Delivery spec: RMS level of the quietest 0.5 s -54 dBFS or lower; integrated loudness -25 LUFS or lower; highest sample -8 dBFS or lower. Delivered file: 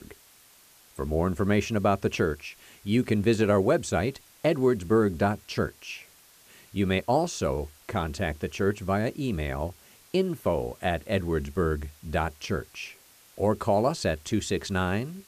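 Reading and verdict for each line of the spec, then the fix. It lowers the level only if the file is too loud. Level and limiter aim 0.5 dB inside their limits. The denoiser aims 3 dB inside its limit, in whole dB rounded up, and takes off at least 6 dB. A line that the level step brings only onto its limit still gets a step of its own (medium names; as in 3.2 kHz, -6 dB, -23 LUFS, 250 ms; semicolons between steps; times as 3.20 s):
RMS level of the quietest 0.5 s -56 dBFS: pass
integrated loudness -27.5 LUFS: pass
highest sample -12.5 dBFS: pass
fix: none needed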